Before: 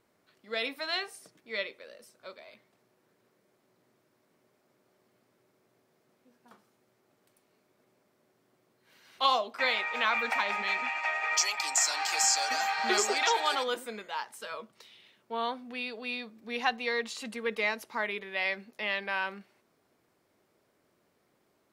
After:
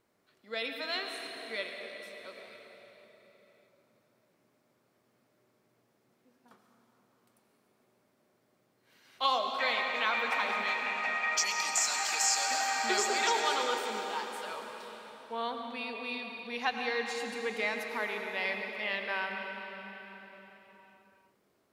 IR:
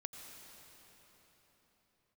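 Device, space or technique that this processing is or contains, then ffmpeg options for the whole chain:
cathedral: -filter_complex "[1:a]atrim=start_sample=2205[a];[0:a][a]afir=irnorm=-1:irlink=0,volume=1.5dB"

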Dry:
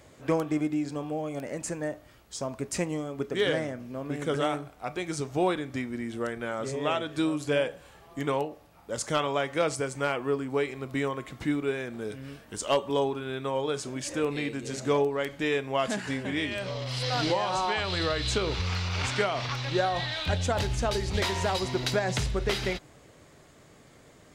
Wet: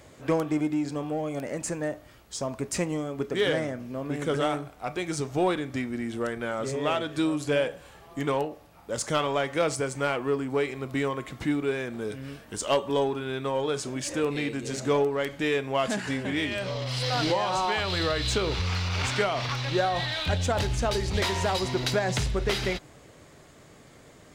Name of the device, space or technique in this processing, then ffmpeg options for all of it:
parallel distortion: -filter_complex "[0:a]asplit=2[a][b];[b]asoftclip=type=hard:threshold=-31.5dB,volume=-8.5dB[c];[a][c]amix=inputs=2:normalize=0"

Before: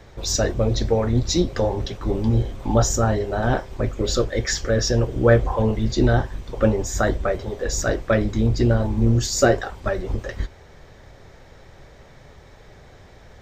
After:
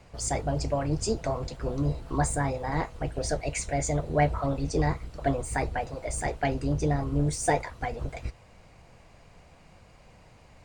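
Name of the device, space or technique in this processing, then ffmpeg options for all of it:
nightcore: -af "asetrate=55566,aresample=44100,volume=-8dB"

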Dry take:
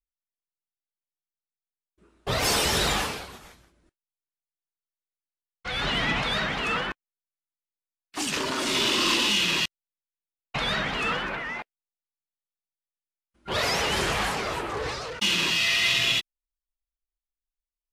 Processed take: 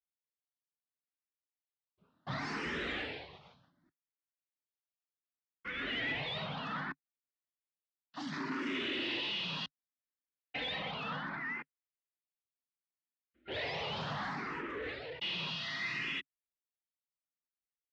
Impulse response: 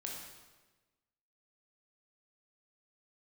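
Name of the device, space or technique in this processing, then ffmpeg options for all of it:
barber-pole phaser into a guitar amplifier: -filter_complex "[0:a]asettb=1/sr,asplit=3[a][b][c];[a]atrim=end=9.614[d];[b]atrim=start=9.61:end=10.91,asetpts=PTS-STARTPTS,afade=t=in:d=0.004:c=qsin,afade=t=out:st=1.296:d=0.004:c=qsin,aecho=1:1:3.9:0.73,atrim=end_sample=57330[e];[c]atrim=start=10.906[f];[d][e]acrossfade=d=0.004:c1=hsin:c2=qsin[g];[g][f]acrossfade=d=0.004:c1=qsin:c2=hsin,asplit=2[h][i];[i]afreqshift=0.67[j];[h][j]amix=inputs=2:normalize=1,asoftclip=type=tanh:threshold=-26.5dB,highpass=88,equalizer=f=150:t=q:w=4:g=6,equalizer=f=270:t=q:w=4:g=7,equalizer=f=1.9k:t=q:w=4:g=5,lowpass=f=4.1k:w=0.5412,lowpass=f=4.1k:w=1.3066,volume=-7dB"

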